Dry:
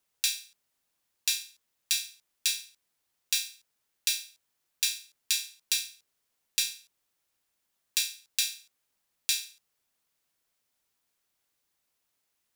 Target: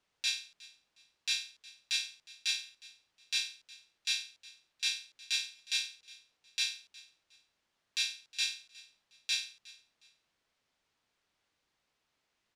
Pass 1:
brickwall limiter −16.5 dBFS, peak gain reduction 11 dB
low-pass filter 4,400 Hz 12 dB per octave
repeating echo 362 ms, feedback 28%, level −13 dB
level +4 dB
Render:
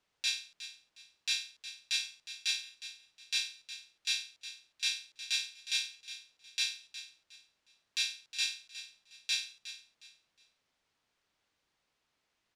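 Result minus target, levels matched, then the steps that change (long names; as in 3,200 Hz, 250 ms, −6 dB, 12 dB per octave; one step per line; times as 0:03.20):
echo-to-direct +8 dB
change: repeating echo 362 ms, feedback 28%, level −21 dB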